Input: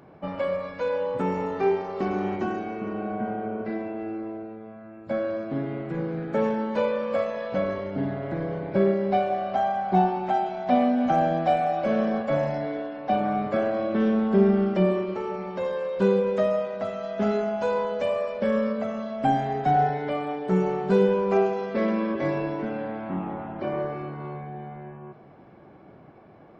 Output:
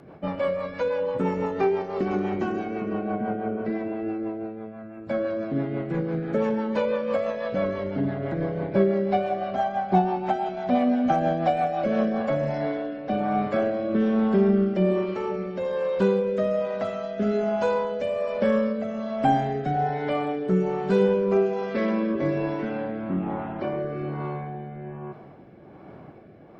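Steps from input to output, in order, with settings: in parallel at -1 dB: compressor, threshold -30 dBFS, peak gain reduction 15 dB; on the sum: rotary speaker horn 6 Hz, later 1.2 Hz, at 11.71

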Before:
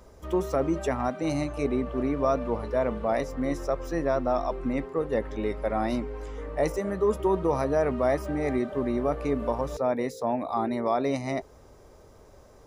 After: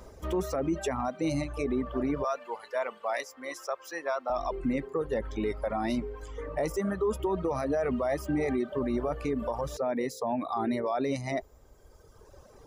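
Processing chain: reverb removal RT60 1.8 s; 2.24–4.3 HPF 880 Hz 12 dB/oct; limiter -24.5 dBFS, peak gain reduction 10 dB; gain +3.5 dB

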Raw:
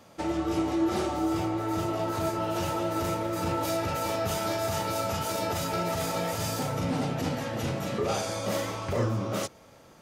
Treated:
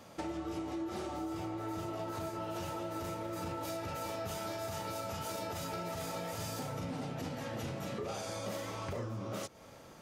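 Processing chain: compressor 6:1, threshold -37 dBFS, peak gain reduction 14 dB

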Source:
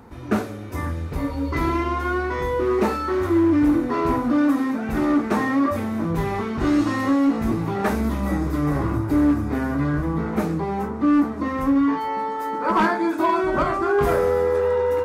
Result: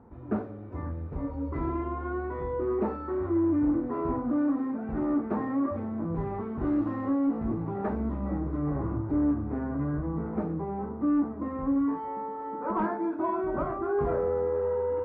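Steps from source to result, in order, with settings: LPF 1000 Hz 12 dB/oct; gain -7.5 dB

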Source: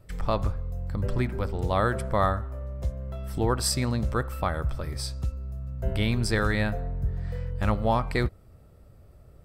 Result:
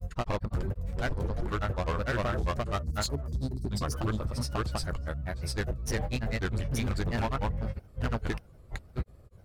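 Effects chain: spectral delete 2.83–3.87, 410–3600 Hz; hard clip -24.5 dBFS, distortion -9 dB; grains, grains 20/s, spray 0.785 s, pitch spread up and down by 3 st

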